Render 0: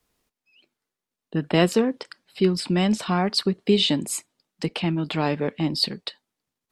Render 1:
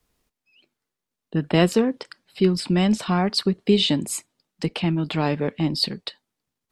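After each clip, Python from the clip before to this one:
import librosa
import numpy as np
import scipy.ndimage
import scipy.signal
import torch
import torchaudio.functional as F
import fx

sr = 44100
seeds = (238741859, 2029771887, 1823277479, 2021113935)

y = fx.low_shelf(x, sr, hz=130.0, db=6.5)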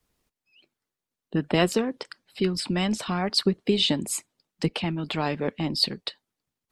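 y = fx.hpss(x, sr, part='harmonic', gain_db=-7)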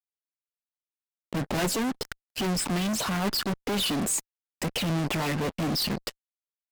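y = fx.phaser_stages(x, sr, stages=12, low_hz=650.0, high_hz=4400.0, hz=2.0, feedback_pct=5)
y = fx.fuzz(y, sr, gain_db=43.0, gate_db=-50.0)
y = fx.cheby_harmonics(y, sr, harmonics=(3, 5), levels_db=(-9, -31), full_scale_db=-10.0)
y = F.gain(torch.from_numpy(y), -8.0).numpy()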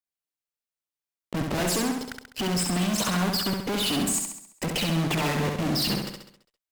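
y = fx.level_steps(x, sr, step_db=10)
y = fx.echo_feedback(y, sr, ms=67, feedback_pct=51, wet_db=-4)
y = F.gain(torch.from_numpy(y), 3.0).numpy()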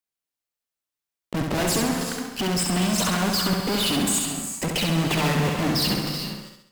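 y = fx.rev_gated(x, sr, seeds[0], gate_ms=420, shape='rising', drr_db=6.5)
y = F.gain(torch.from_numpy(y), 2.5).numpy()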